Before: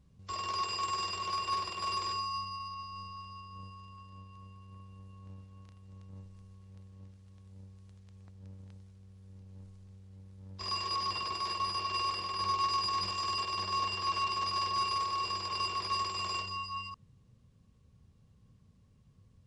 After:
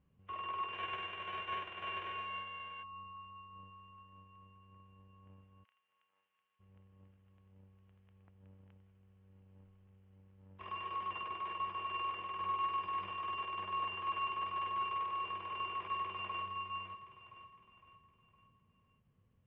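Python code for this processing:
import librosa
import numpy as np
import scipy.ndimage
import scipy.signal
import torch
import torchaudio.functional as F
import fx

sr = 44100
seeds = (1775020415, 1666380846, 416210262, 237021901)

y = fx.envelope_flatten(x, sr, power=0.3, at=(0.72, 2.82), fade=0.02)
y = fx.highpass(y, sr, hz=1500.0, slope=12, at=(5.63, 6.59), fade=0.02)
y = fx.echo_throw(y, sr, start_s=15.54, length_s=0.9, ms=510, feedback_pct=45, wet_db=-8.5)
y = scipy.signal.sosfilt(scipy.signal.ellip(4, 1.0, 40, 3000.0, 'lowpass', fs=sr, output='sos'), y)
y = fx.low_shelf(y, sr, hz=180.0, db=-8.5)
y = F.gain(torch.from_numpy(y), -4.0).numpy()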